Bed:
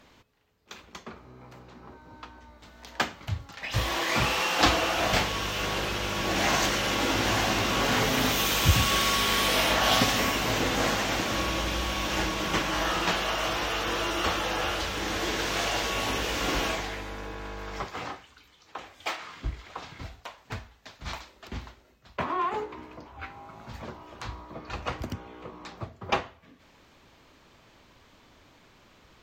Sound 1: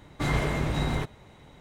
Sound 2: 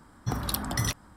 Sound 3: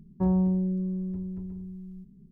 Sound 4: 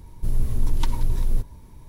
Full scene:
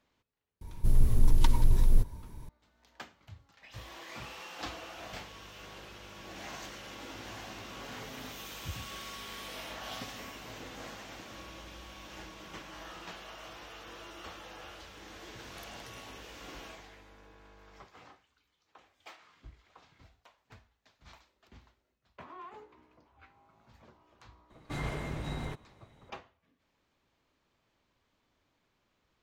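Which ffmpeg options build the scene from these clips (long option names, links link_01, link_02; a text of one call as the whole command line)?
ffmpeg -i bed.wav -i cue0.wav -i cue1.wav -i cue2.wav -i cue3.wav -filter_complex "[0:a]volume=-19dB[link_01];[2:a]acompressor=threshold=-33dB:ratio=6:attack=3.2:release=140:knee=1:detection=peak[link_02];[4:a]atrim=end=1.88,asetpts=PTS-STARTPTS,volume=-1dB,afade=type=in:duration=0.004:curve=hsin,afade=type=out:start_time=1.876:duration=0.004:curve=hsin,adelay=610[link_03];[link_02]atrim=end=1.16,asetpts=PTS-STARTPTS,volume=-16.5dB,afade=type=in:duration=0.004:curve=hsin,afade=type=out:start_time=1.156:duration=0.004:curve=hsin,adelay=15090[link_04];[1:a]atrim=end=1.6,asetpts=PTS-STARTPTS,volume=-10dB,afade=type=in:duration=0.004:curve=hsin,afade=type=out:start_time=1.596:duration=0.004:curve=hsin,adelay=24500[link_05];[link_01][link_03][link_04][link_05]amix=inputs=4:normalize=0" out.wav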